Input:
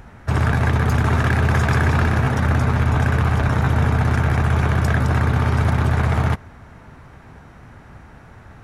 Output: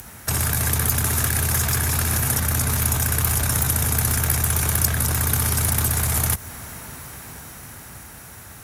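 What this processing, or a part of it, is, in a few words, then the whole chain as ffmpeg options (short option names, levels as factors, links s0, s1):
FM broadcast chain: -filter_complex "[0:a]highpass=46,dynaudnorm=f=370:g=11:m=3.76,acrossover=split=110|5200[s0][s1][s2];[s0]acompressor=threshold=0.126:ratio=4[s3];[s1]acompressor=threshold=0.0708:ratio=4[s4];[s2]acompressor=threshold=0.00631:ratio=4[s5];[s3][s4][s5]amix=inputs=3:normalize=0,aemphasis=mode=production:type=75fm,alimiter=limit=0.168:level=0:latency=1:release=21,asoftclip=type=hard:threshold=0.133,lowpass=f=15000:w=0.5412,lowpass=f=15000:w=1.3066,aemphasis=mode=production:type=75fm"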